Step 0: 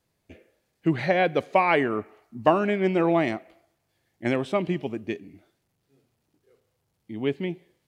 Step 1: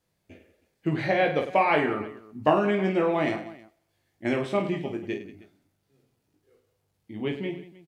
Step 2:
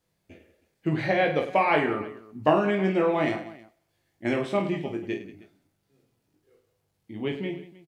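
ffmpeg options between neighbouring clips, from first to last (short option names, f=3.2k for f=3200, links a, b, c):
-af "aecho=1:1:20|52|103.2|185.1|316.2:0.631|0.398|0.251|0.158|0.1,volume=-3dB"
-filter_complex "[0:a]asplit=2[a][b];[b]adelay=26,volume=-13dB[c];[a][c]amix=inputs=2:normalize=0"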